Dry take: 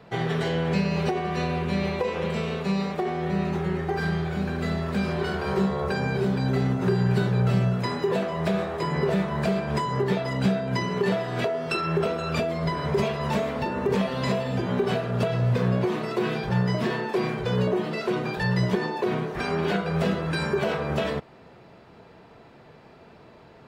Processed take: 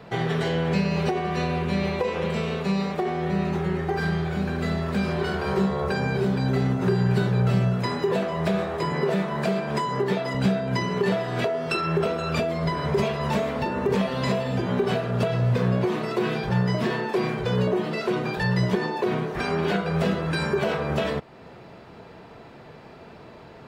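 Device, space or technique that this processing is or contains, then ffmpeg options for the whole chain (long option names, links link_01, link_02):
parallel compression: -filter_complex "[0:a]asettb=1/sr,asplit=3[link_01][link_02][link_03];[link_01]atrim=end=8.924[link_04];[link_02]atrim=start=8.92:end=10.35,asetpts=PTS-STARTPTS,afade=type=in:duration=0.004:curve=qsin,afade=type=out:start_time=1.426:duration=0.004:curve=qsin,highpass=160[link_05];[link_03]atrim=start=10.346[link_06];[link_04][link_05]acrossfade=duration=0.004:curve1=hsin:curve2=qsin[link_07];[link_07][link_06]acrossfade=duration=0.004:curve1=qsin:curve2=hsin,asplit=2[link_08][link_09];[link_09]acompressor=threshold=-40dB:ratio=6,volume=-2dB[link_10];[link_08][link_10]amix=inputs=2:normalize=0"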